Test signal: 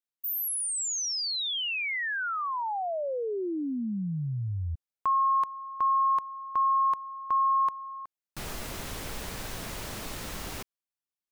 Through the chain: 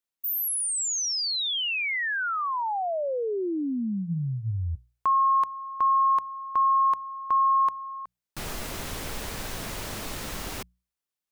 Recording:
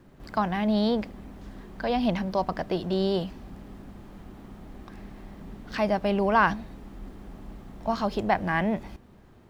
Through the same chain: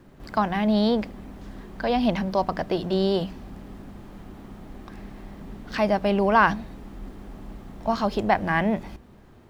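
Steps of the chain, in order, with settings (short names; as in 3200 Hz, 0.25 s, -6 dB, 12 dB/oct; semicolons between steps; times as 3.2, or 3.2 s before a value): notches 60/120/180 Hz; gain +3 dB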